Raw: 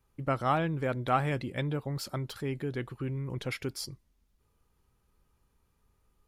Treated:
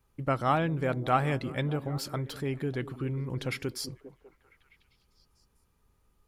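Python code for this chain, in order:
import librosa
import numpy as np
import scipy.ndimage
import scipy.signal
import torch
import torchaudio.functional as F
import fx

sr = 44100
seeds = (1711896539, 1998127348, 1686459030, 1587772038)

y = fx.echo_stepped(x, sr, ms=199, hz=210.0, octaves=0.7, feedback_pct=70, wet_db=-10.0)
y = y * librosa.db_to_amplitude(1.5)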